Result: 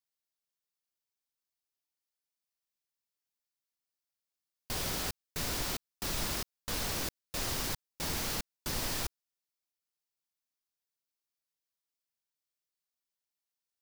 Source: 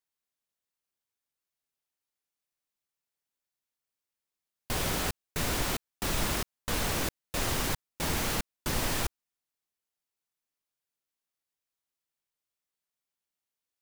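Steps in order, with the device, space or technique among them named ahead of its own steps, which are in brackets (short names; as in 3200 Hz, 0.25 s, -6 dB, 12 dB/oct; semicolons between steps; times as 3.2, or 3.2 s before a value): presence and air boost (bell 4900 Hz +5.5 dB 0.86 oct; high shelf 11000 Hz +6 dB); gain -6.5 dB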